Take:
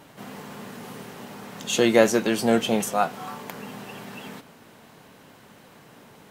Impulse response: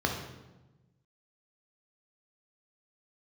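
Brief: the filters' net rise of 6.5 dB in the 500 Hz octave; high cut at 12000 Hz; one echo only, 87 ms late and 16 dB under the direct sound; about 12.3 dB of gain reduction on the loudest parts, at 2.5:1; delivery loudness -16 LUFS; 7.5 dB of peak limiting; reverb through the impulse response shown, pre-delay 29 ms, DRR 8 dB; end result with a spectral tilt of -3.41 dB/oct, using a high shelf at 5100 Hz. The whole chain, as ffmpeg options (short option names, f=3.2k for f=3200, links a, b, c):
-filter_complex "[0:a]lowpass=12k,equalizer=f=500:t=o:g=7.5,highshelf=f=5.1k:g=8.5,acompressor=threshold=-25dB:ratio=2.5,alimiter=limit=-18dB:level=0:latency=1,aecho=1:1:87:0.158,asplit=2[a][b];[1:a]atrim=start_sample=2205,adelay=29[c];[b][c]afir=irnorm=-1:irlink=0,volume=-18dB[d];[a][d]amix=inputs=2:normalize=0,volume=15dB"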